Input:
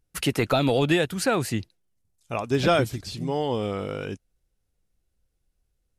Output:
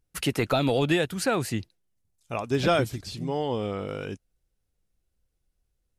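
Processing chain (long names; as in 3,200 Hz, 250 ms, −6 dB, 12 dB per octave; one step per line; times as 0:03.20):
0:03.19–0:03.87: high-shelf EQ 9,400 Hz → 5,600 Hz −7 dB
level −2 dB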